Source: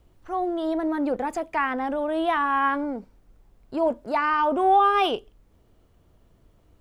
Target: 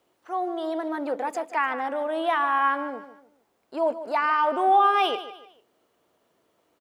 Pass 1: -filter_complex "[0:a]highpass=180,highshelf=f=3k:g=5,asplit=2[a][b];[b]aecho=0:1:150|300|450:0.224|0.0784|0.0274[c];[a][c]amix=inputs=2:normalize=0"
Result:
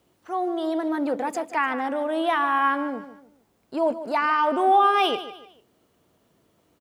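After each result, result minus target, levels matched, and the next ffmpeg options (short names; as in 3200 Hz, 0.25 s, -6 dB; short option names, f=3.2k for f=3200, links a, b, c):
250 Hz band +4.5 dB; 8000 Hz band +3.0 dB
-filter_complex "[0:a]highpass=410,highshelf=f=3k:g=5,asplit=2[a][b];[b]aecho=0:1:150|300|450:0.224|0.0784|0.0274[c];[a][c]amix=inputs=2:normalize=0"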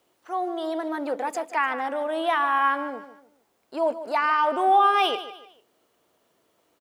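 8000 Hz band +4.0 dB
-filter_complex "[0:a]highpass=410,asplit=2[a][b];[b]aecho=0:1:150|300|450:0.224|0.0784|0.0274[c];[a][c]amix=inputs=2:normalize=0"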